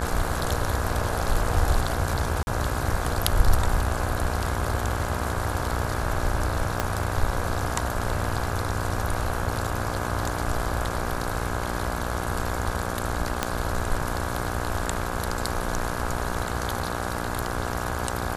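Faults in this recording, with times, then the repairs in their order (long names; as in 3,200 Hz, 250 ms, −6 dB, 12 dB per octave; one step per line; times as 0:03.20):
mains buzz 60 Hz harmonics 28 −31 dBFS
0:02.43–0:02.47: drop-out 41 ms
0:06.80: click −9 dBFS
0:13.43: click −9 dBFS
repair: click removal
hum removal 60 Hz, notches 28
repair the gap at 0:02.43, 41 ms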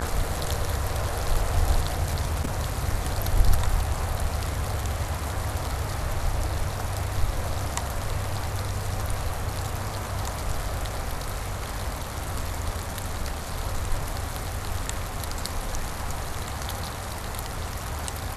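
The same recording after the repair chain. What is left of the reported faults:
0:06.80: click
0:13.43: click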